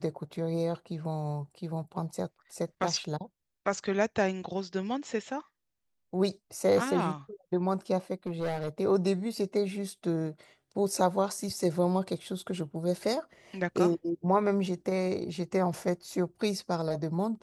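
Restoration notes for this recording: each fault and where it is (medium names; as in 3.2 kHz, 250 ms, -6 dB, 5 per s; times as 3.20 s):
8.26–8.69 s: clipped -27.5 dBFS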